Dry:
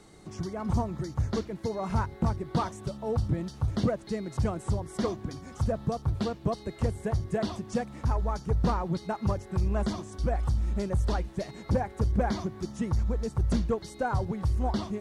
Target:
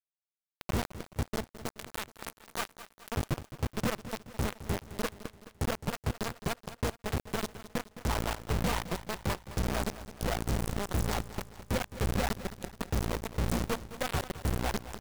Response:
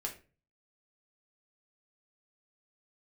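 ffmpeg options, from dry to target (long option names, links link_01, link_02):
-filter_complex "[0:a]asplit=3[link_01][link_02][link_03];[link_01]afade=type=out:start_time=1.69:duration=0.02[link_04];[link_02]aemphasis=mode=production:type=riaa,afade=type=in:start_time=1.69:duration=0.02,afade=type=out:start_time=3.11:duration=0.02[link_05];[link_03]afade=type=in:start_time=3.11:duration=0.02[link_06];[link_04][link_05][link_06]amix=inputs=3:normalize=0,afwtdn=0.0224,equalizer=frequency=2100:width_type=o:width=0.38:gain=-4.5,aeval=exprs='0.168*(cos(1*acos(clip(val(0)/0.168,-1,1)))-cos(1*PI/2))+0.00119*(cos(3*acos(clip(val(0)/0.168,-1,1)))-cos(3*PI/2))+0.00841*(cos(4*acos(clip(val(0)/0.168,-1,1)))-cos(4*PI/2))+0.00188*(cos(5*acos(clip(val(0)/0.168,-1,1)))-cos(5*PI/2))+0.015*(cos(6*acos(clip(val(0)/0.168,-1,1)))-cos(6*PI/2))':channel_layout=same,crystalizer=i=5:c=0,acrusher=bits=3:mix=0:aa=0.000001,aecho=1:1:213|426|639|852|1065:0.2|0.104|0.054|0.0281|0.0146,volume=-6.5dB"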